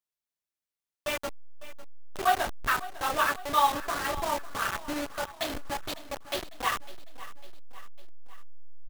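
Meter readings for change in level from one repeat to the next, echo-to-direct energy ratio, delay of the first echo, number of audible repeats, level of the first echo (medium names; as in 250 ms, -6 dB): -5.0 dB, -15.0 dB, 552 ms, 3, -16.5 dB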